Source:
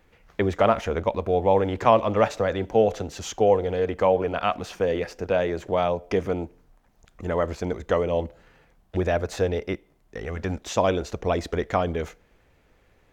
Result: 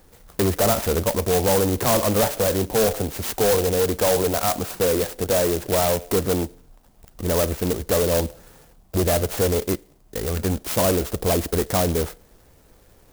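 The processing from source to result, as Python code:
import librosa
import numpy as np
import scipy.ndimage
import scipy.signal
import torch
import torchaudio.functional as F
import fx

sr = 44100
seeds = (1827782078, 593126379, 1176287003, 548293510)

y = 10.0 ** (-22.5 / 20.0) * np.tanh(x / 10.0 ** (-22.5 / 20.0))
y = fx.clock_jitter(y, sr, seeds[0], jitter_ms=0.12)
y = F.gain(torch.from_numpy(y), 7.5).numpy()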